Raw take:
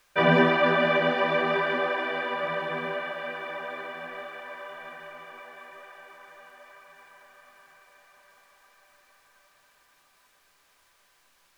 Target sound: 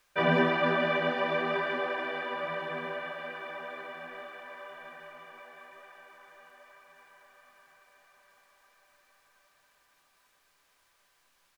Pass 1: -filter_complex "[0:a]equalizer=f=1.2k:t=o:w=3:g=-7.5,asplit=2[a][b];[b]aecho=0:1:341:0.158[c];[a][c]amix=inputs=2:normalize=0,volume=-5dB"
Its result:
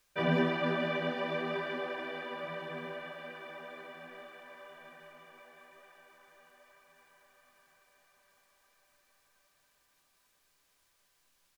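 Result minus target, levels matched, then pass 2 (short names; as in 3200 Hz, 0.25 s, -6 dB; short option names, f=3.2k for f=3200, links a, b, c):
1000 Hz band -2.5 dB
-filter_complex "[0:a]asplit=2[a][b];[b]aecho=0:1:341:0.158[c];[a][c]amix=inputs=2:normalize=0,volume=-5dB"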